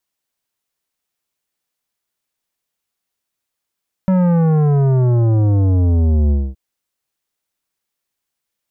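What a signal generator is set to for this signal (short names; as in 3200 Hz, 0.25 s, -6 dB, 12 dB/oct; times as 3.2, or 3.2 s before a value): sub drop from 190 Hz, over 2.47 s, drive 12 dB, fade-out 0.24 s, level -12 dB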